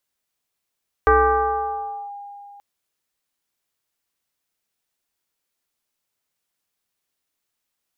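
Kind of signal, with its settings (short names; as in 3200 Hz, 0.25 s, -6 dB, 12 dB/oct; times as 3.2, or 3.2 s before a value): FM tone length 1.53 s, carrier 810 Hz, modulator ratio 0.46, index 1.8, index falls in 1.04 s linear, decay 2.89 s, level -10 dB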